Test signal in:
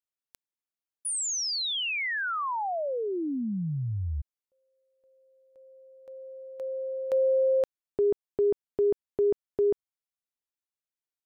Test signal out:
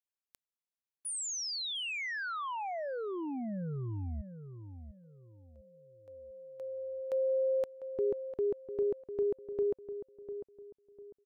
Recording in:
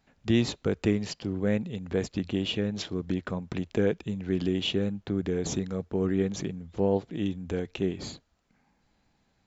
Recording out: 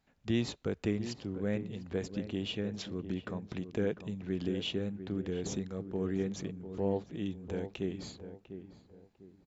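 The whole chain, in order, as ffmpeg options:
-filter_complex "[0:a]asplit=2[a][b];[b]adelay=699,lowpass=f=1.2k:p=1,volume=-10dB,asplit=2[c][d];[d]adelay=699,lowpass=f=1.2k:p=1,volume=0.33,asplit=2[e][f];[f]adelay=699,lowpass=f=1.2k:p=1,volume=0.33,asplit=2[g][h];[h]adelay=699,lowpass=f=1.2k:p=1,volume=0.33[i];[a][c][e][g][i]amix=inputs=5:normalize=0,volume=-7dB"

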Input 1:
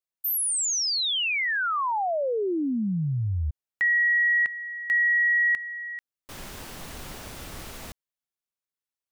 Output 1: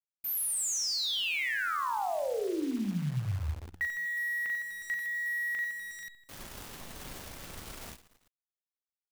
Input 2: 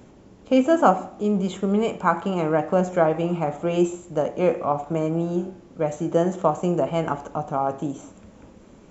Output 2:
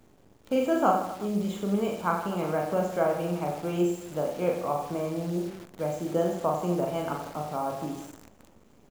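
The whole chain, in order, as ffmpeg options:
-af "aecho=1:1:40|92|159.6|247.5|361.7:0.631|0.398|0.251|0.158|0.1,acrusher=bits=7:dc=4:mix=0:aa=0.000001,volume=-8dB"

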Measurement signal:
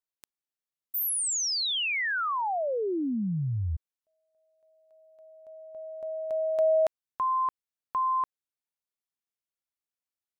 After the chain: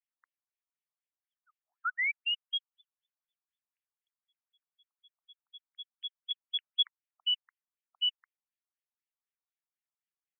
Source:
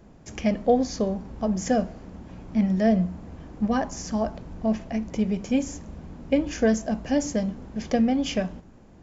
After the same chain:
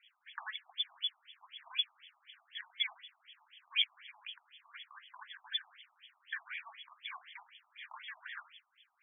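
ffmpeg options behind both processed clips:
-filter_complex "[0:a]acrossover=split=3100[a][b];[b]acompressor=threshold=-34dB:ratio=4:attack=1:release=60[c];[a][c]amix=inputs=2:normalize=0,lowpass=f=3.4k:t=q:w=0.5098,lowpass=f=3.4k:t=q:w=0.6013,lowpass=f=3.4k:t=q:w=0.9,lowpass=f=3.4k:t=q:w=2.563,afreqshift=-4000,afftfilt=real='re*between(b*sr/1024,890*pow(2500/890,0.5+0.5*sin(2*PI*4*pts/sr))/1.41,890*pow(2500/890,0.5+0.5*sin(2*PI*4*pts/sr))*1.41)':imag='im*between(b*sr/1024,890*pow(2500/890,0.5+0.5*sin(2*PI*4*pts/sr))/1.41,890*pow(2500/890,0.5+0.5*sin(2*PI*4*pts/sr))*1.41)':win_size=1024:overlap=0.75"

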